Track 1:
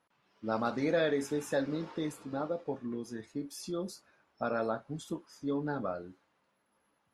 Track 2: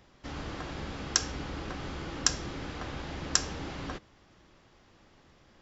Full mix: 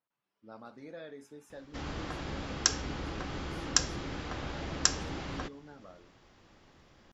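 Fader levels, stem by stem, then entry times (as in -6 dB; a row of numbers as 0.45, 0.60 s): -17.0, 0.0 dB; 0.00, 1.50 s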